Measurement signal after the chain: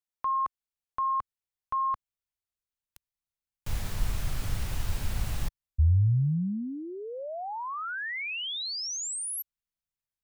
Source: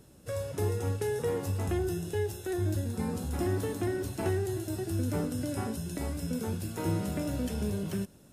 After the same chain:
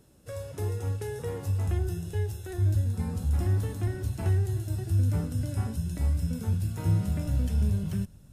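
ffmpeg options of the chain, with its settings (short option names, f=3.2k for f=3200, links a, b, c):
-af "asubboost=boost=8:cutoff=120,volume=-3.5dB"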